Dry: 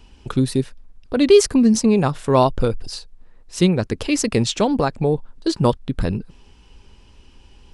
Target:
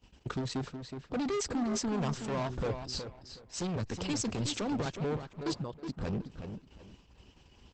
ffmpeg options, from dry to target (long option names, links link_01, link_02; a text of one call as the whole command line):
ffmpeg -i in.wav -filter_complex "[0:a]agate=range=-18dB:threshold=-46dB:ratio=16:detection=peak,highpass=55,asplit=3[link_01][link_02][link_03];[link_01]afade=type=out:start_time=2.16:duration=0.02[link_04];[link_02]bandreject=frequency=125.7:width_type=h:width=4,bandreject=frequency=251.4:width_type=h:width=4,bandreject=frequency=377.1:width_type=h:width=4,afade=type=in:start_time=2.16:duration=0.02,afade=type=out:start_time=2.7:duration=0.02[link_05];[link_03]afade=type=in:start_time=2.7:duration=0.02[link_06];[link_04][link_05][link_06]amix=inputs=3:normalize=0,asettb=1/sr,asplit=3[link_07][link_08][link_09];[link_07]atrim=end=3.764[link_10];[link_08]atrim=start=3.76:end=4.86,asetpts=PTS-STARTPTS,afade=type=in:duration=0.004:curve=qsin,afade=type=out:start_time=1.096:duration=0.004:curve=qsin,acrossover=split=190|3000[link_11][link_12][link_13];[link_12]acompressor=threshold=-26dB:ratio=2[link_14];[link_11][link_14][link_13]amix=inputs=3:normalize=0[link_15];[link_09]atrim=start=4.856[link_16];[link_10][link_15]acrossfade=duration=0.004:curve1=hsin:curve2=qsin[link_17];[link_17][link_16]acrossfade=duration=0.004:curve1=qsin:curve2=hsin,alimiter=limit=-13dB:level=0:latency=1:release=44,asplit=3[link_18][link_19][link_20];[link_18]afade=type=out:start_time=5.53:duration=0.02[link_21];[link_19]acompressor=threshold=-38dB:ratio=2,afade=type=in:start_time=5.53:duration=0.02,afade=type=out:start_time=6.01:duration=0.02[link_22];[link_20]afade=type=in:start_time=6.01:duration=0.02[link_23];[link_21][link_22][link_23]amix=inputs=3:normalize=0,volume=25dB,asoftclip=hard,volume=-25dB,asplit=2[link_24][link_25];[link_25]adelay=369,lowpass=frequency=4100:poles=1,volume=-7.5dB,asplit=2[link_26][link_27];[link_27]adelay=369,lowpass=frequency=4100:poles=1,volume=0.24,asplit=2[link_28][link_29];[link_29]adelay=369,lowpass=frequency=4100:poles=1,volume=0.24[link_30];[link_24][link_26][link_28][link_30]amix=inputs=4:normalize=0,volume=-5dB" -ar 48000 -c:a libopus -b:a 12k out.opus